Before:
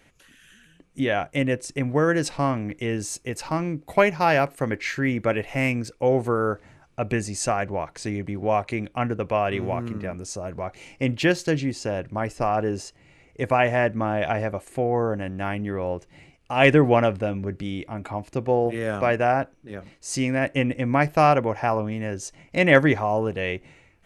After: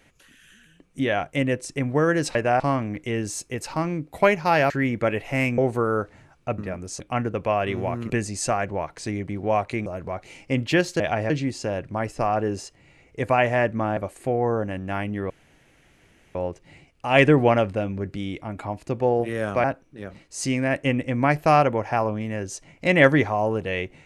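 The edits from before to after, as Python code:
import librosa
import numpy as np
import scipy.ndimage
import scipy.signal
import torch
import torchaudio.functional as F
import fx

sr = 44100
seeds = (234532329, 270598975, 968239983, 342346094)

y = fx.edit(x, sr, fx.cut(start_s=4.45, length_s=0.48),
    fx.cut(start_s=5.81, length_s=0.28),
    fx.swap(start_s=7.09, length_s=1.76, other_s=9.95, other_length_s=0.42),
    fx.move(start_s=14.18, length_s=0.3, to_s=11.51),
    fx.insert_room_tone(at_s=15.81, length_s=1.05),
    fx.move(start_s=19.1, length_s=0.25, to_s=2.35), tone=tone)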